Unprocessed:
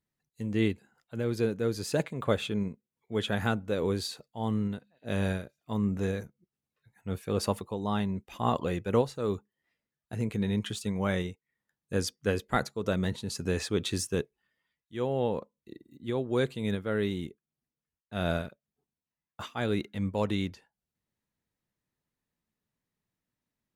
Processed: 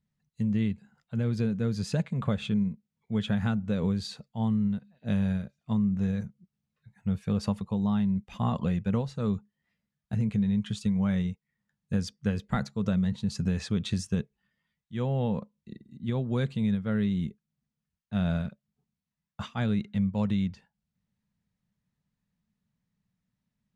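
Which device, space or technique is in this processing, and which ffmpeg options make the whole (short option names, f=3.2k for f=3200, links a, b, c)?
jukebox: -af "lowpass=6.9k,lowshelf=f=250:t=q:w=3:g=7,acompressor=threshold=-24dB:ratio=5"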